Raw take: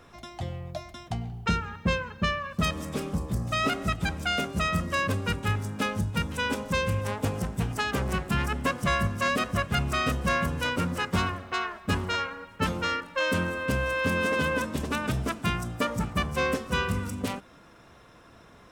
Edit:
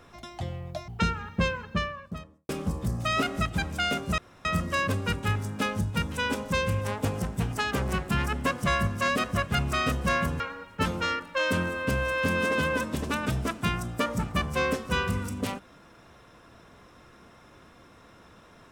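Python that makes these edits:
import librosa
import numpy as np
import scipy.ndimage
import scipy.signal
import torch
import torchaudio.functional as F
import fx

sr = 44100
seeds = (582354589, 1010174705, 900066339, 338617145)

y = fx.studio_fade_out(x, sr, start_s=2.04, length_s=0.92)
y = fx.edit(y, sr, fx.cut(start_s=0.88, length_s=0.47),
    fx.insert_room_tone(at_s=4.65, length_s=0.27),
    fx.cut(start_s=10.6, length_s=1.61), tone=tone)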